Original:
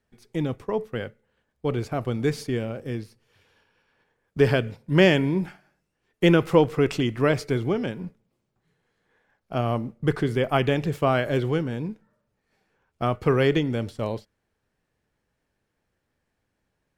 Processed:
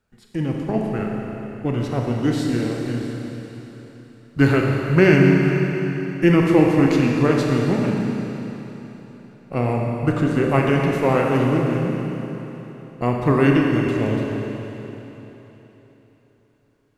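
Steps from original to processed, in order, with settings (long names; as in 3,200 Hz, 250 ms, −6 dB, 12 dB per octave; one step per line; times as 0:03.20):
formants moved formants −3 semitones
four-comb reverb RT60 3.7 s, combs from 29 ms, DRR −0.5 dB
level +2.5 dB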